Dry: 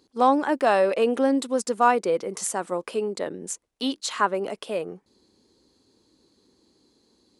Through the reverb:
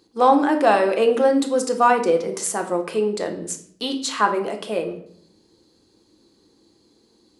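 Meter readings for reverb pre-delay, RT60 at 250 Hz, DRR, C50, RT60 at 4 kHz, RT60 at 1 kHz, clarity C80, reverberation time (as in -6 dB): 3 ms, 0.85 s, 4.0 dB, 10.5 dB, 0.50 s, 0.55 s, 14.0 dB, 0.60 s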